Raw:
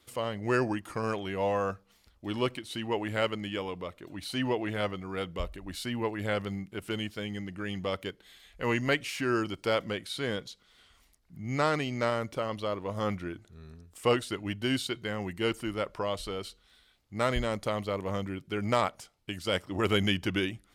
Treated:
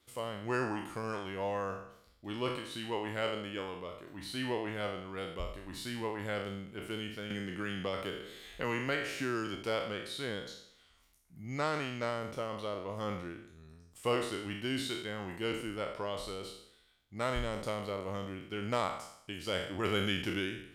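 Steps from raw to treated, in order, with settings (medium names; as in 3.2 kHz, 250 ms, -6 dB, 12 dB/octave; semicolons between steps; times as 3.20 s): spectral sustain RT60 0.70 s; 7.30–9.56 s: three bands compressed up and down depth 70%; trim -7 dB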